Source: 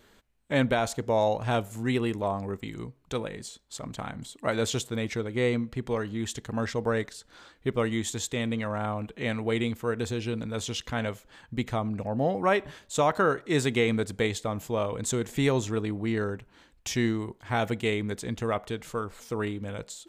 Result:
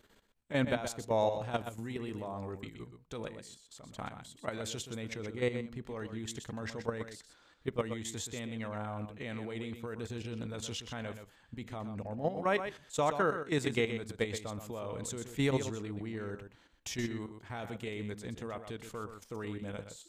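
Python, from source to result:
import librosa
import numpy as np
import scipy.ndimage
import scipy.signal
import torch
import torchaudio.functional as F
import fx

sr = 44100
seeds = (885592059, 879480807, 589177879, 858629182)

p1 = fx.level_steps(x, sr, step_db=12)
p2 = p1 + fx.echo_single(p1, sr, ms=124, db=-9.0, dry=0)
y = p2 * 10.0 ** (-4.0 / 20.0)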